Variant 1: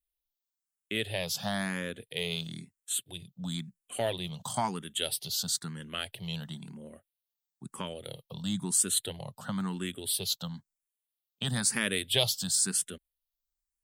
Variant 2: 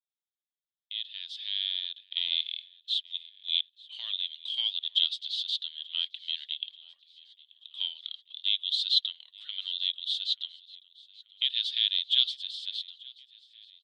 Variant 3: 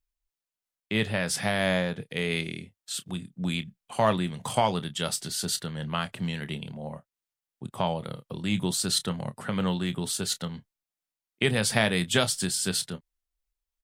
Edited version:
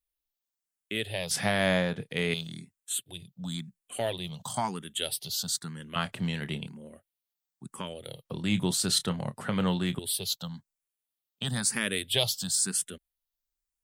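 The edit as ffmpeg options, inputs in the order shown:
-filter_complex "[2:a]asplit=3[a][b][c];[0:a]asplit=4[d][e][f][g];[d]atrim=end=1.312[h];[a]atrim=start=1.308:end=2.342[i];[e]atrim=start=2.338:end=5.962[j];[b]atrim=start=5.958:end=6.672[k];[f]atrim=start=6.668:end=8.252[l];[c]atrim=start=8.248:end=9.992[m];[g]atrim=start=9.988[n];[h][i]acrossfade=d=0.004:c1=hsin:c2=hsin[o];[o][j]acrossfade=d=0.004:c1=hsin:c2=hsin[p];[p][k]acrossfade=d=0.004:c1=hsin:c2=hsin[q];[q][l]acrossfade=d=0.004:c1=hsin:c2=hsin[r];[r][m]acrossfade=d=0.004:c1=hsin:c2=hsin[s];[s][n]acrossfade=d=0.004:c1=hsin:c2=hsin"

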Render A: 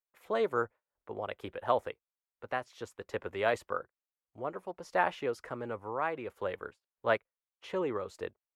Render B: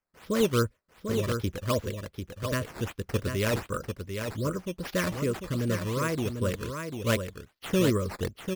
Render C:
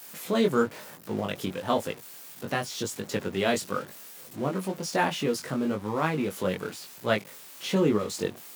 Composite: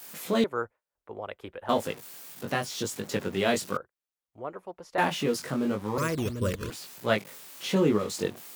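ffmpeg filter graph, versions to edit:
-filter_complex "[0:a]asplit=2[a][b];[2:a]asplit=4[c][d][e][f];[c]atrim=end=0.442[g];[a]atrim=start=0.438:end=1.692[h];[d]atrim=start=1.688:end=3.772[i];[b]atrim=start=3.768:end=4.982[j];[e]atrim=start=4.978:end=5.982[k];[1:a]atrim=start=5.978:end=6.702[l];[f]atrim=start=6.698[m];[g][h]acrossfade=d=0.004:c1=hsin:c2=hsin[n];[n][i]acrossfade=d=0.004:c1=hsin:c2=hsin[o];[o][j]acrossfade=d=0.004:c1=hsin:c2=hsin[p];[p][k]acrossfade=d=0.004:c1=hsin:c2=hsin[q];[q][l]acrossfade=d=0.004:c1=hsin:c2=hsin[r];[r][m]acrossfade=d=0.004:c1=hsin:c2=hsin"

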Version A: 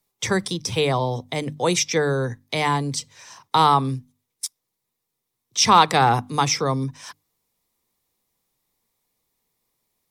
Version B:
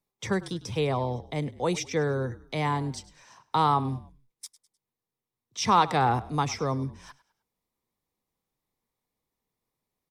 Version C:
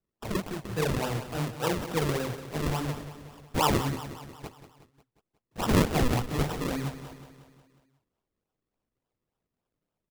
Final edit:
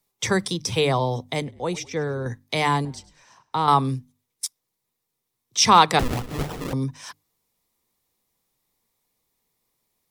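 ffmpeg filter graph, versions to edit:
-filter_complex "[1:a]asplit=2[a][b];[0:a]asplit=4[c][d][e][f];[c]atrim=end=1.422[g];[a]atrim=start=1.418:end=2.262[h];[d]atrim=start=2.258:end=2.852[i];[b]atrim=start=2.848:end=3.682[j];[e]atrim=start=3.678:end=5.992[k];[2:a]atrim=start=5.988:end=6.732[l];[f]atrim=start=6.728[m];[g][h]acrossfade=d=0.004:c1=hsin:c2=hsin[n];[n][i]acrossfade=d=0.004:c1=hsin:c2=hsin[o];[o][j]acrossfade=d=0.004:c1=hsin:c2=hsin[p];[p][k]acrossfade=d=0.004:c1=hsin:c2=hsin[q];[q][l]acrossfade=d=0.004:c1=hsin:c2=hsin[r];[r][m]acrossfade=d=0.004:c1=hsin:c2=hsin"

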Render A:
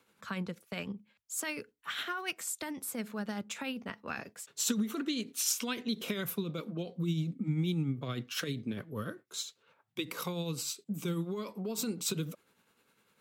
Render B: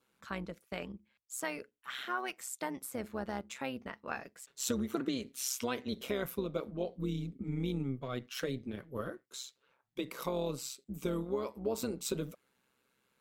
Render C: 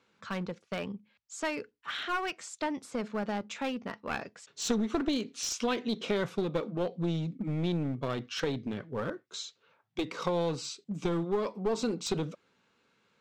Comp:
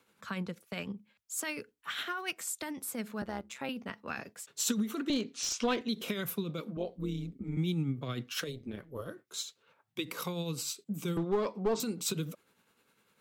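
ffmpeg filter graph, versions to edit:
-filter_complex "[1:a]asplit=3[a][b][c];[2:a]asplit=2[d][e];[0:a]asplit=6[f][g][h][i][j][k];[f]atrim=end=3.222[l];[a]atrim=start=3.218:end=3.692[m];[g]atrim=start=3.688:end=5.102[n];[d]atrim=start=5.098:end=5.812[o];[h]atrim=start=5.808:end=6.772[p];[b]atrim=start=6.768:end=7.572[q];[i]atrim=start=7.568:end=8.64[r];[c]atrim=start=8.4:end=9.16[s];[j]atrim=start=8.92:end=11.172[t];[e]atrim=start=11.168:end=11.802[u];[k]atrim=start=11.798[v];[l][m]acrossfade=d=0.004:c1=hsin:c2=hsin[w];[w][n]acrossfade=d=0.004:c1=hsin:c2=hsin[x];[x][o]acrossfade=d=0.004:c1=hsin:c2=hsin[y];[y][p]acrossfade=d=0.004:c1=hsin:c2=hsin[z];[z][q]acrossfade=d=0.004:c1=hsin:c2=hsin[aa];[aa][r]acrossfade=d=0.004:c1=hsin:c2=hsin[ab];[ab][s]acrossfade=d=0.24:c1=tri:c2=tri[ac];[ac][t]acrossfade=d=0.24:c1=tri:c2=tri[ad];[ad][u]acrossfade=d=0.004:c1=hsin:c2=hsin[ae];[ae][v]acrossfade=d=0.004:c1=hsin:c2=hsin"

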